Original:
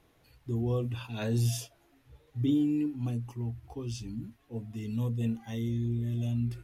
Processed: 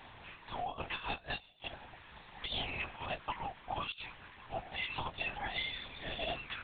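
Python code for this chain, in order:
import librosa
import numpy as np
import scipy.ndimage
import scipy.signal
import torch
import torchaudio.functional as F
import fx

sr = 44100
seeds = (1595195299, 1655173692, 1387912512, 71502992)

y = scipy.signal.sosfilt(scipy.signal.ellip(4, 1.0, 40, 630.0, 'highpass', fs=sr, output='sos'), x)
y = fx.over_compress(y, sr, threshold_db=-52.0, ratio=-0.5)
y = fx.lpc_vocoder(y, sr, seeds[0], excitation='whisper', order=8)
y = y * 10.0 ** (14.0 / 20.0)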